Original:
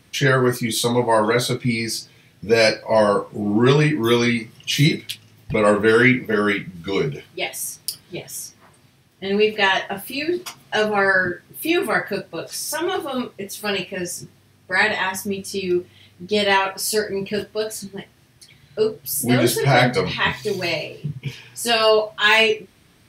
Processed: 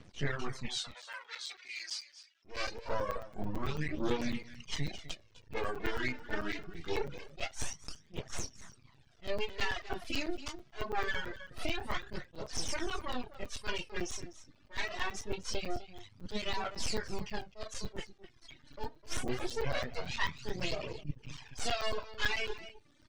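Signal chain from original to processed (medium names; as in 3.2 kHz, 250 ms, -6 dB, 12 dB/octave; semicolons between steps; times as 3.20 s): in parallel at 0 dB: gain riding within 4 dB 2 s; on the sum: half-wave rectifier; low-pass 7 kHz 24 dB/octave; compression 5:1, threshold -23 dBFS, peak gain reduction 16.5 dB; reverb removal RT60 0.94 s; 0.68–2.45 s: Butterworth band-pass 4.1 kHz, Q 0.58; 7.63–8.23 s: band-stop 4.1 kHz, Q 5.3; delay 255 ms -15 dB; phaser 0.24 Hz, delay 3.5 ms, feedback 56%; crackling interface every 0.11 s, samples 256, zero, from 0.91 s; attacks held to a fixed rise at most 290 dB/s; trim -8.5 dB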